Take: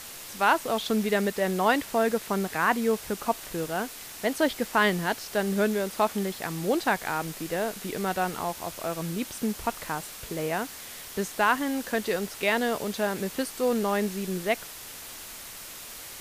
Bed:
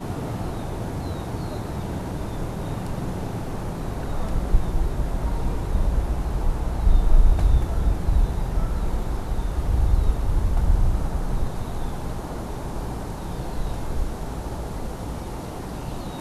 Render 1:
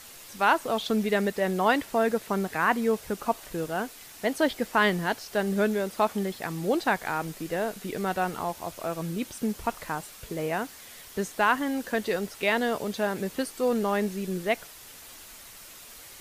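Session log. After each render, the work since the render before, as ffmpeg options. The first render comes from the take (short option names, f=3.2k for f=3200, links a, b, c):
-af "afftdn=nr=6:nf=-42"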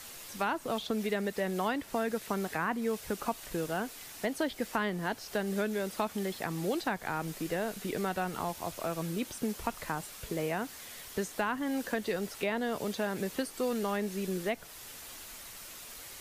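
-filter_complex "[0:a]acrossover=split=290|1500[a][b][c];[a]acompressor=threshold=-37dB:ratio=4[d];[b]acompressor=threshold=-33dB:ratio=4[e];[c]acompressor=threshold=-40dB:ratio=4[f];[d][e][f]amix=inputs=3:normalize=0"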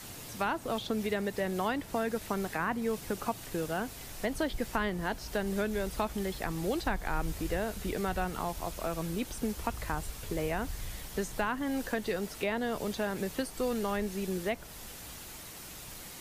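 -filter_complex "[1:a]volume=-21dB[a];[0:a][a]amix=inputs=2:normalize=0"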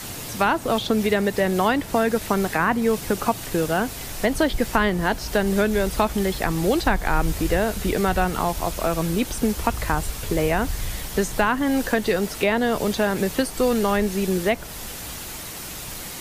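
-af "volume=11.5dB"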